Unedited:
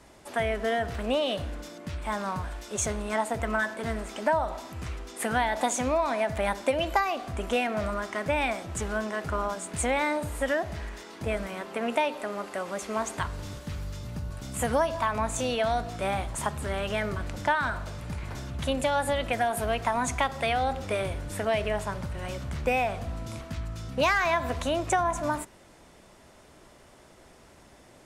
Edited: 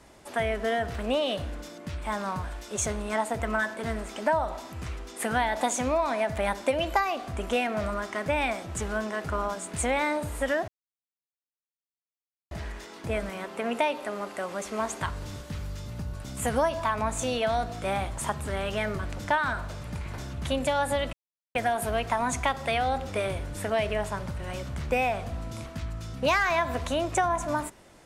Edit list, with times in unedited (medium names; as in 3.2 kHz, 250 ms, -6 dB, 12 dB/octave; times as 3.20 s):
10.68 s: insert silence 1.83 s
19.30 s: insert silence 0.42 s